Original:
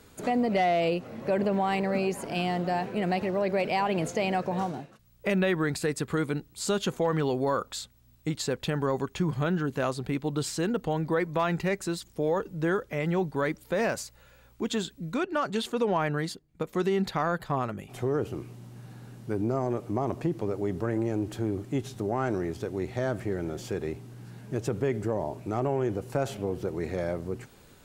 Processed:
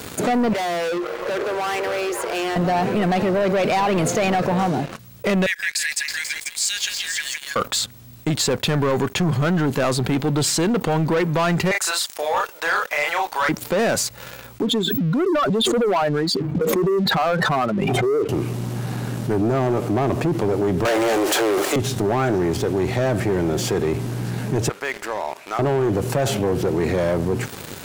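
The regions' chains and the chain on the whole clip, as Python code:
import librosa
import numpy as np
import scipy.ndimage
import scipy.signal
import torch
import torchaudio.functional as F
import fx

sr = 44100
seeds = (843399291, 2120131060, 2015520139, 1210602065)

y = fx.chain(x, sr, fx.cheby_ripple_highpass(hz=340.0, ripple_db=9),
    fx.clip_hard(threshold_db=-39.0), at=(0.53, 2.56))
y = fx.chain(y, sr, fx.cheby_ripple_highpass(hz=1600.0, ripple_db=6),
    fx.echo_stepped(ms=163, hz=2500.0, octaves=0.7, feedback_pct=70, wet_db=-5.0), at=(5.46, 7.56))
y = fx.chain(y, sr, fx.highpass(hz=740.0, slope=24),
    fx.doubler(ms=34.0, db=-2.5), at=(11.71, 13.49))
y = fx.chain(y, sr, fx.spec_expand(power=2.0),
    fx.highpass(hz=280.0, slope=12),
    fx.pre_swell(db_per_s=27.0), at=(14.62, 18.29))
y = fx.chain(y, sr, fx.highpass(hz=490.0, slope=24),
    fx.leveller(passes=5), at=(20.85, 21.76))
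y = fx.chain(y, sr, fx.highpass(hz=1400.0, slope=12),
    fx.high_shelf(hz=3700.0, db=-9.5), at=(24.69, 25.59))
y = scipy.signal.sosfilt(scipy.signal.butter(4, 83.0, 'highpass', fs=sr, output='sos'), y)
y = fx.leveller(y, sr, passes=3)
y = fx.env_flatten(y, sr, amount_pct=50)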